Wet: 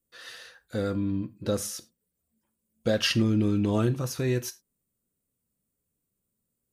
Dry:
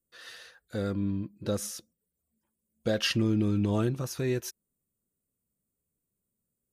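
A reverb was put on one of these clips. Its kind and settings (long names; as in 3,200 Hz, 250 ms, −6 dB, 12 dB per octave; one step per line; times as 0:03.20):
reverb whose tail is shaped and stops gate 120 ms falling, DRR 11.5 dB
level +2.5 dB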